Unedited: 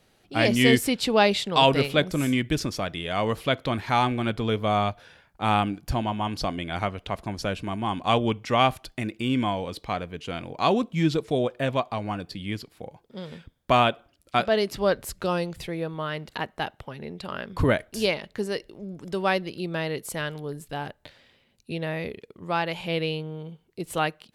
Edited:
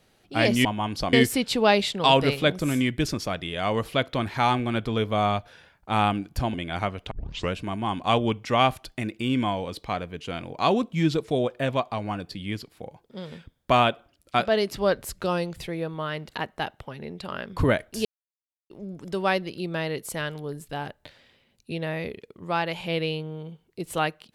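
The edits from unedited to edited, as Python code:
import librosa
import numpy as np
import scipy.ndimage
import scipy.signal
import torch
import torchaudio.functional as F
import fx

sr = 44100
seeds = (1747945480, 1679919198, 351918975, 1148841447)

y = fx.edit(x, sr, fx.move(start_s=6.06, length_s=0.48, to_s=0.65),
    fx.tape_start(start_s=7.11, length_s=0.42),
    fx.silence(start_s=18.05, length_s=0.65), tone=tone)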